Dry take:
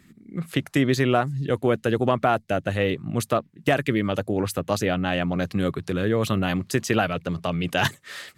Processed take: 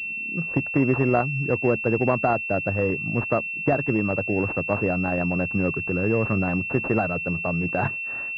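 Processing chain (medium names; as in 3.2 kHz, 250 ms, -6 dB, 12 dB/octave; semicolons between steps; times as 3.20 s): class-D stage that switches slowly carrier 2.7 kHz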